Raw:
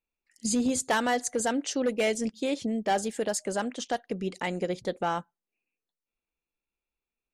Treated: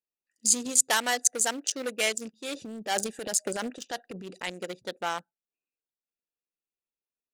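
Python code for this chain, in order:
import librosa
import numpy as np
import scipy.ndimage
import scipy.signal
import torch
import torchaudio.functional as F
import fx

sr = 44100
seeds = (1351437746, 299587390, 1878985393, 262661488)

y = fx.wiener(x, sr, points=41)
y = fx.tilt_eq(y, sr, slope=4.5)
y = fx.transient(y, sr, attack_db=-4, sustain_db=9, at=(2.33, 4.5))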